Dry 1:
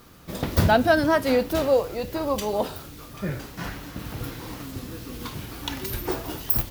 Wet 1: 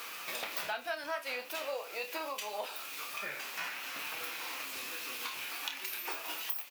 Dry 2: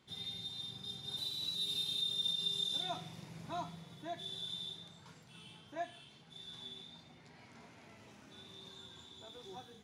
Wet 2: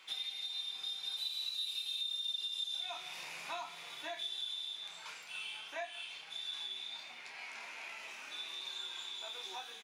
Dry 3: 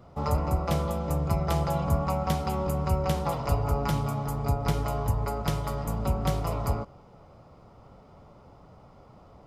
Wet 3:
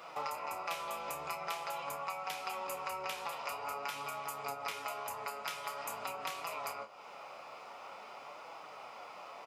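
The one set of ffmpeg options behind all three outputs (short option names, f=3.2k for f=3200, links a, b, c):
-filter_complex "[0:a]highpass=910,equalizer=f=2.5k:w=3.8:g=10,acompressor=threshold=-51dB:ratio=4,flanger=delay=6.1:depth=7.8:regen=62:speed=0.47:shape=sinusoidal,asplit=2[a][b];[b]adelay=29,volume=-8.5dB[c];[a][c]amix=inputs=2:normalize=0,volume=15dB"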